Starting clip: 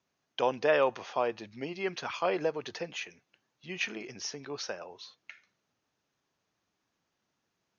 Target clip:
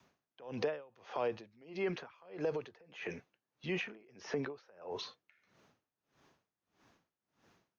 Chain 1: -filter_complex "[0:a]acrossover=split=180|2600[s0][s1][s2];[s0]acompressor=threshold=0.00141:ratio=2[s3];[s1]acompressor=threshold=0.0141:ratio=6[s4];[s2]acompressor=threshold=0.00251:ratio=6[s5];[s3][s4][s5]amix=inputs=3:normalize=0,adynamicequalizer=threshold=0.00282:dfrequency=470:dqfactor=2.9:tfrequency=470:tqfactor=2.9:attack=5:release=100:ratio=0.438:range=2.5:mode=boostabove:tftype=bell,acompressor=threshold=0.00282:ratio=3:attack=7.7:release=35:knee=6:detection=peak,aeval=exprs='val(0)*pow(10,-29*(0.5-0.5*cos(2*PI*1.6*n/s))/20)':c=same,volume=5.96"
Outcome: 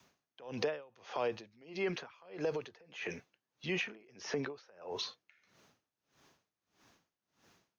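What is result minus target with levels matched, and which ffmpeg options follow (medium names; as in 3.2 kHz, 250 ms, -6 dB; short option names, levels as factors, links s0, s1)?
4 kHz band +4.0 dB
-filter_complex "[0:a]acrossover=split=180|2600[s0][s1][s2];[s0]acompressor=threshold=0.00141:ratio=2[s3];[s1]acompressor=threshold=0.0141:ratio=6[s4];[s2]acompressor=threshold=0.00251:ratio=6[s5];[s3][s4][s5]amix=inputs=3:normalize=0,adynamicequalizer=threshold=0.00282:dfrequency=470:dqfactor=2.9:tfrequency=470:tqfactor=2.9:attack=5:release=100:ratio=0.438:range=2.5:mode=boostabove:tftype=bell,acompressor=threshold=0.00282:ratio=3:attack=7.7:release=35:knee=6:detection=peak,highshelf=f=3300:g=-9,aeval=exprs='val(0)*pow(10,-29*(0.5-0.5*cos(2*PI*1.6*n/s))/20)':c=same,volume=5.96"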